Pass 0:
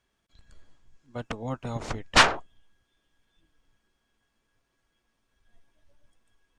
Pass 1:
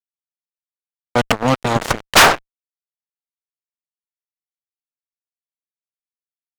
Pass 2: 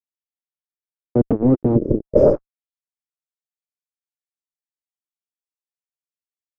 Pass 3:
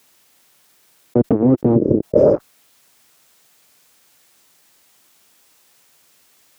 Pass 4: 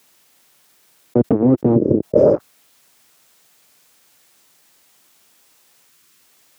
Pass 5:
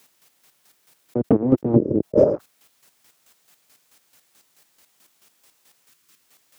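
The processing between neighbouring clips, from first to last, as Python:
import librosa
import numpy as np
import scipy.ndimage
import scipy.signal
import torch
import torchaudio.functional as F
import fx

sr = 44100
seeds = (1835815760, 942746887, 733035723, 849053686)

y1 = fx.low_shelf(x, sr, hz=300.0, db=-6.5)
y1 = fx.rider(y1, sr, range_db=5, speed_s=2.0)
y1 = fx.fuzz(y1, sr, gain_db=28.0, gate_db=-35.0)
y1 = y1 * librosa.db_to_amplitude(7.5)
y2 = fx.spec_repair(y1, sr, seeds[0], start_s=1.78, length_s=0.59, low_hz=630.0, high_hz=4800.0, source='after')
y2 = fx.leveller(y2, sr, passes=3)
y2 = fx.filter_sweep_lowpass(y2, sr, from_hz=350.0, to_hz=7800.0, start_s=2.07, end_s=2.87, q=2.5)
y2 = y2 * librosa.db_to_amplitude(-5.5)
y3 = scipy.signal.sosfilt(scipy.signal.butter(2, 100.0, 'highpass', fs=sr, output='sos'), y2)
y3 = fx.env_flatten(y3, sr, amount_pct=50)
y4 = fx.spec_box(y3, sr, start_s=5.89, length_s=0.32, low_hz=420.0, high_hz=990.0, gain_db=-9)
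y4 = scipy.signal.sosfilt(scipy.signal.butter(2, 65.0, 'highpass', fs=sr, output='sos'), y4)
y5 = fx.chopper(y4, sr, hz=4.6, depth_pct=60, duty_pct=30)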